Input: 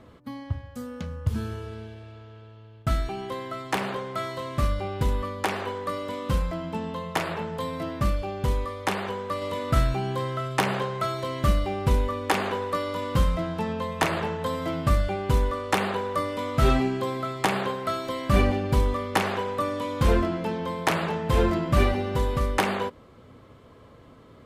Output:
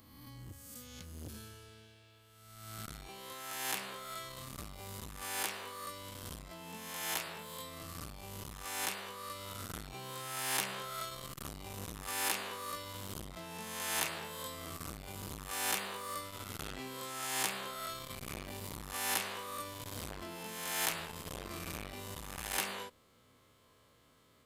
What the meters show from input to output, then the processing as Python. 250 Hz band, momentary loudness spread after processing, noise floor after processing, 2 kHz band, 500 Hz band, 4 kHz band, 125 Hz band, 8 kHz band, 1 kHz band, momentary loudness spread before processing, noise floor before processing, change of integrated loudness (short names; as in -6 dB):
-20.0 dB, 14 LU, -66 dBFS, -9.0 dB, -19.5 dB, -5.0 dB, -21.5 dB, +3.0 dB, -14.5 dB, 9 LU, -50 dBFS, -12.5 dB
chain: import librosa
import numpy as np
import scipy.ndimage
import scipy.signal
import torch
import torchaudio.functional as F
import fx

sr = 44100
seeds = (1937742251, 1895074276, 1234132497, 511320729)

y = fx.spec_swells(x, sr, rise_s=1.28)
y = F.preemphasis(torch.from_numpy(y), 0.9).numpy()
y = fx.transformer_sat(y, sr, knee_hz=3300.0)
y = y * librosa.db_to_amplitude(-1.5)